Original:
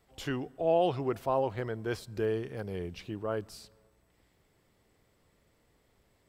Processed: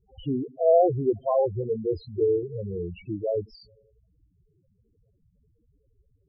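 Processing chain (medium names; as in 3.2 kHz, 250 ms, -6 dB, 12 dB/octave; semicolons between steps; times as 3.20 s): loudest bins only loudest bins 4; 1.62–2.43 s: doubling 13 ms -4 dB; trim +9 dB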